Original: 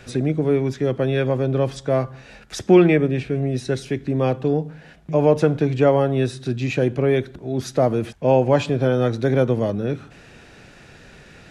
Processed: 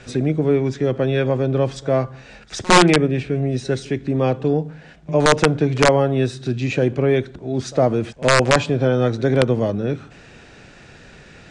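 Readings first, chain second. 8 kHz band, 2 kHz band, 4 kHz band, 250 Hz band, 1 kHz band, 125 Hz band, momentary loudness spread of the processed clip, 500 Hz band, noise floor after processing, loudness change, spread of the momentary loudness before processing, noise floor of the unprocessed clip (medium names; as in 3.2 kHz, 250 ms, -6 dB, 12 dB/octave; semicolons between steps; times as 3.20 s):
+11.0 dB, +8.0 dB, +10.0 dB, +0.5 dB, +5.5 dB, +1.0 dB, 9 LU, +0.5 dB, -45 dBFS, +1.5 dB, 9 LU, -47 dBFS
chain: integer overflow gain 6 dB; steep low-pass 9 kHz 48 dB/octave; pre-echo 57 ms -22.5 dB; trim +1.5 dB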